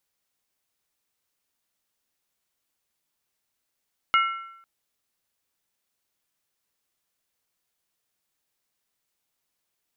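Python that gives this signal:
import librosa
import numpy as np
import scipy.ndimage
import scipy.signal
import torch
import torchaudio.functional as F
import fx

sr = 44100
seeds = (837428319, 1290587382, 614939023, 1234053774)

y = fx.strike_skin(sr, length_s=0.5, level_db=-16.0, hz=1350.0, decay_s=0.8, tilt_db=4.0, modes=3)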